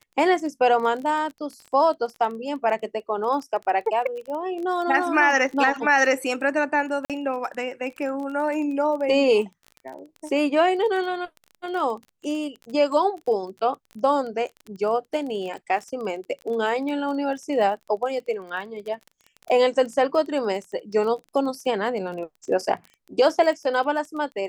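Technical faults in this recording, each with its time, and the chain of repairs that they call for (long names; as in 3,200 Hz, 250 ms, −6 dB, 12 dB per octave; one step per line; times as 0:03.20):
surface crackle 24 per second −32 dBFS
0:07.05–0:07.10: drop-out 47 ms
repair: click removal
repair the gap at 0:07.05, 47 ms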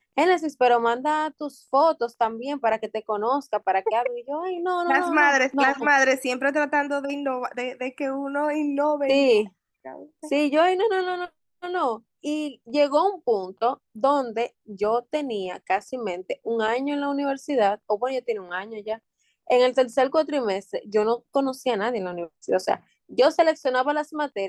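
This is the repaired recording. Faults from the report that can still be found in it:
none of them is left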